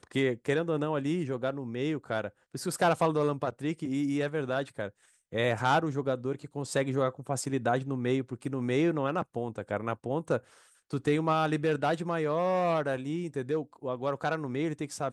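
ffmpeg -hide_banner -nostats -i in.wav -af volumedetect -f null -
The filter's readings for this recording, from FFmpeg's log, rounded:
mean_volume: -30.4 dB
max_volume: -13.2 dB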